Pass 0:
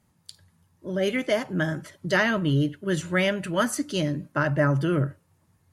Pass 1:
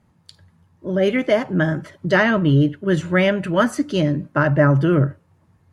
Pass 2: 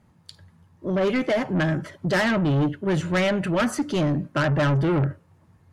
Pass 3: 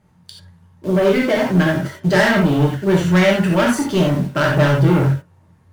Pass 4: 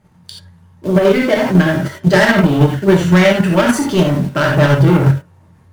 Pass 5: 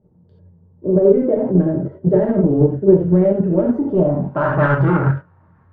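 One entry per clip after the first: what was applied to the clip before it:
low-pass 1.9 kHz 6 dB/octave; trim +7.5 dB
saturation -19 dBFS, distortion -9 dB; trim +1 dB
in parallel at -7 dB: bit crusher 6-bit; on the sum: gated-style reverb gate 110 ms flat, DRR -1.5 dB
in parallel at +2 dB: level held to a coarse grid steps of 14 dB; on the sum: peak limiter -1.5 dBFS, peak gain reduction 5 dB
low-pass sweep 450 Hz -> 1.4 kHz, 3.82–4.69 s; trim -5.5 dB

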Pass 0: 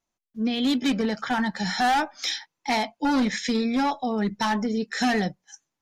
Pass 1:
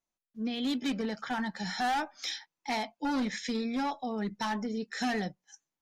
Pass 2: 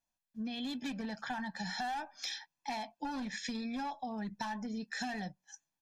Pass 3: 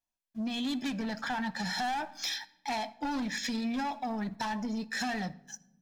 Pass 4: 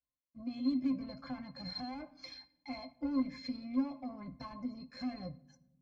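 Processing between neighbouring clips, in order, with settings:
peaking EQ 89 Hz -5 dB; trim -8 dB
comb 1.2 ms, depth 55%; compression, threshold -35 dBFS, peak gain reduction 10.5 dB; trim -1 dB
waveshaping leveller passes 2; reverberation RT60 0.95 s, pre-delay 3 ms, DRR 16 dB
pitch-class resonator C, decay 0.11 s; trim +5.5 dB

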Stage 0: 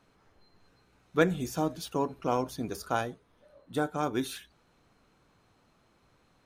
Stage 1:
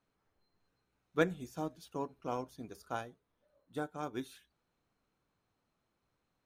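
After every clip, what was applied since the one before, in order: upward expansion 1.5:1, over -40 dBFS; trim -5 dB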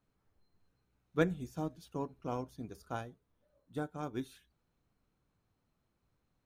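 bass shelf 220 Hz +10.5 dB; trim -2.5 dB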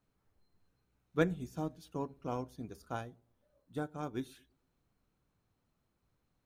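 feedback echo behind a low-pass 112 ms, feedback 37%, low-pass 480 Hz, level -24 dB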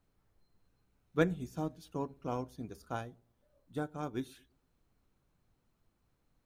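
added noise brown -78 dBFS; trim +1 dB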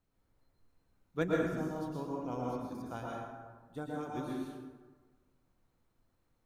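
plate-style reverb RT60 1.4 s, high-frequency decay 0.5×, pre-delay 100 ms, DRR -4 dB; trim -5 dB

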